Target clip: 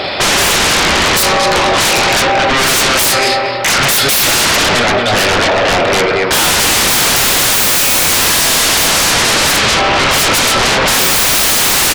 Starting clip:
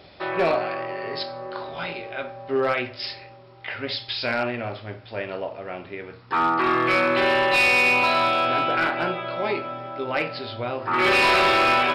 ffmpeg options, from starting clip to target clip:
-filter_complex "[0:a]asplit=2[s0][s1];[s1]highpass=f=720:p=1,volume=5.01,asoftclip=type=tanh:threshold=0.188[s2];[s0][s2]amix=inputs=2:normalize=0,lowpass=f=5300:p=1,volume=0.501,asplit=2[s3][s4];[s4]adelay=228,lowpass=f=2700:p=1,volume=0.501,asplit=2[s5][s6];[s6]adelay=228,lowpass=f=2700:p=1,volume=0.42,asplit=2[s7][s8];[s8]adelay=228,lowpass=f=2700:p=1,volume=0.42,asplit=2[s9][s10];[s10]adelay=228,lowpass=f=2700:p=1,volume=0.42,asplit=2[s11][s12];[s12]adelay=228,lowpass=f=2700:p=1,volume=0.42[s13];[s3][s5][s7][s9][s11][s13]amix=inputs=6:normalize=0,aeval=exprs='0.224*sin(PI/2*6.31*val(0)/0.224)':c=same,volume=1.78"

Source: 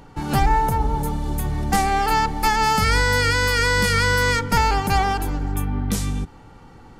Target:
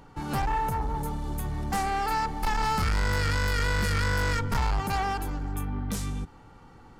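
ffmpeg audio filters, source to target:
-filter_complex "[0:a]asettb=1/sr,asplit=3[s0][s1][s2];[s0]atrim=end=2.424[s3];[s1]atrim=start=2.42:end=4.8,asetpts=PTS-STARTPTS,afade=t=in:d=0.004:c=qsin,afade=t=out:st=2.376:d=0.004:c=qsin,lowshelf=f=150:g=11[s4];[s2]atrim=start=4.796[s5];[s3][s4]acrossfade=d=0.004:c1=hsin:c2=qsin[s6];[s6][s5]acrossfade=d=0.004:c1=qsin:c2=hsin,asoftclip=type=tanh:threshold=0.158,equalizer=f=1200:t=o:w=0.77:g=3,volume=0.473"

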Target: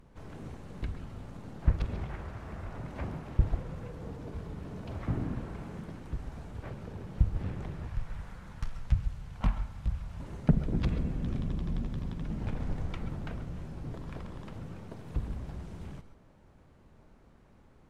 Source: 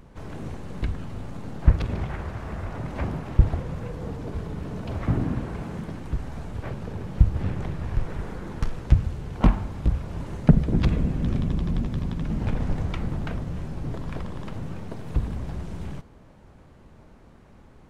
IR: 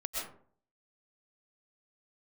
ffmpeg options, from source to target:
-filter_complex "[0:a]asettb=1/sr,asplit=3[s0][s1][s2];[s0]atrim=end=7.884[s3];[s1]atrim=start=7.88:end=10.2,asetpts=PTS-STARTPTS,afade=t=in:d=0.004:c=qsin,afade=t=out:st=2.316:d=0.004:c=qsin,equalizer=f=360:w=1.1:g=-14.5[s4];[s2]atrim=start=10.196[s5];[s3][s4]acrossfade=d=0.004:c1=hsin:c2=qsin[s6];[s6][s5]acrossfade=d=0.004:c1=qsin:c2=hsin[s7];[1:a]atrim=start_sample=2205,atrim=end_sample=4410,asetrate=31752,aresample=44100[s8];[s7][s8]afir=irnorm=-1:irlink=0,volume=0.422"

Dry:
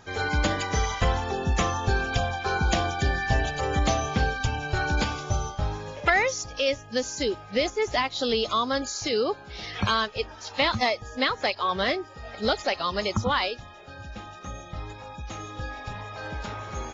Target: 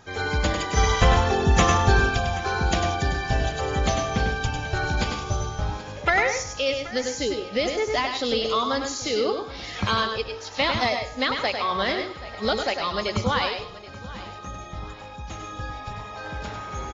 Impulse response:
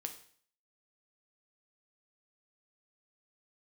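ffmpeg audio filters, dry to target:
-filter_complex "[0:a]asplit=3[s0][s1][s2];[s0]afade=t=out:st=0.76:d=0.02[s3];[s1]acontrast=45,afade=t=in:st=0.76:d=0.02,afade=t=out:st=2.09:d=0.02[s4];[s2]afade=t=in:st=2.09:d=0.02[s5];[s3][s4][s5]amix=inputs=3:normalize=0,aecho=1:1:779|1558|2337:0.133|0.044|0.0145,asplit=2[s6][s7];[1:a]atrim=start_sample=2205,adelay=100[s8];[s7][s8]afir=irnorm=-1:irlink=0,volume=0.708[s9];[s6][s9]amix=inputs=2:normalize=0"

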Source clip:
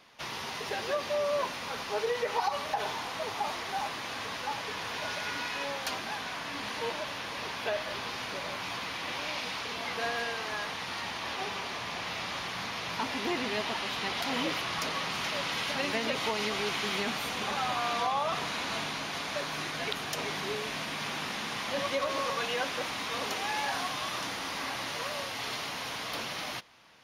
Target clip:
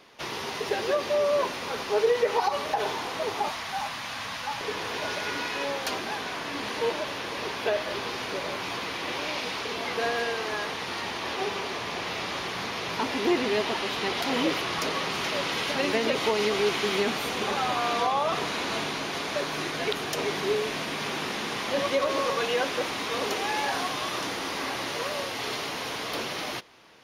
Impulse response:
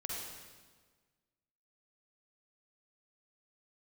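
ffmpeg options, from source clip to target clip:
-af "asetnsamples=n=441:p=0,asendcmd='3.49 equalizer g -9;4.61 equalizer g 8.5',equalizer=f=390:w=1.7:g=8,volume=1.41"

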